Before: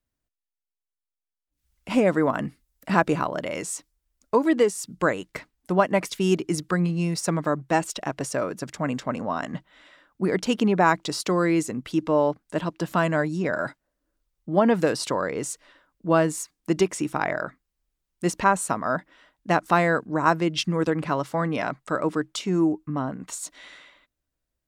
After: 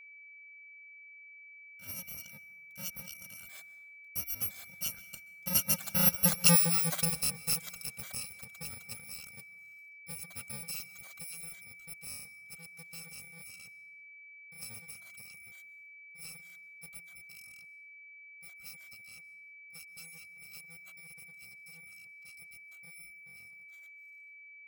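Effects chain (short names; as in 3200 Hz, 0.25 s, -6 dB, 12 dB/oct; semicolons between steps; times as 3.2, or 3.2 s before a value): FFT order left unsorted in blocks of 128 samples; Doppler pass-by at 6.46, 14 m/s, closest 4.1 m; reverb removal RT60 0.6 s; plate-style reverb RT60 1.2 s, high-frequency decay 0.6×, pre-delay 0.115 s, DRR 17.5 dB; whine 2300 Hz -52 dBFS; gain +2 dB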